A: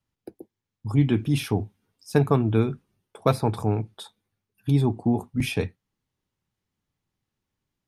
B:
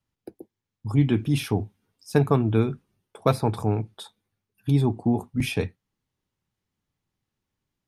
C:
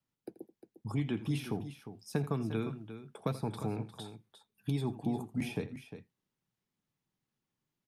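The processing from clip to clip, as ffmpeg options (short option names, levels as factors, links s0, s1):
-af anull
-filter_complex "[0:a]acrossover=split=420|1300[s0][s1][s2];[s0]acompressor=threshold=0.0398:ratio=4[s3];[s1]acompressor=threshold=0.0112:ratio=4[s4];[s2]acompressor=threshold=0.00891:ratio=4[s5];[s3][s4][s5]amix=inputs=3:normalize=0,lowshelf=f=110:t=q:w=1.5:g=-7.5,aecho=1:1:83|353:0.158|0.266,volume=0.562"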